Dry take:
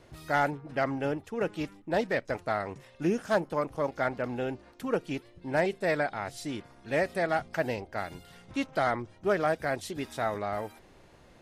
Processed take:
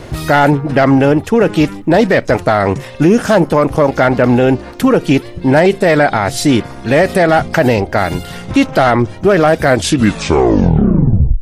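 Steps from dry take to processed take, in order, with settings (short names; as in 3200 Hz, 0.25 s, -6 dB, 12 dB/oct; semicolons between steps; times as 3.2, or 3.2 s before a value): tape stop at the end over 1.78 s; soft clip -18 dBFS, distortion -20 dB; low shelf 370 Hz +4 dB; maximiser +24.5 dB; gain -1 dB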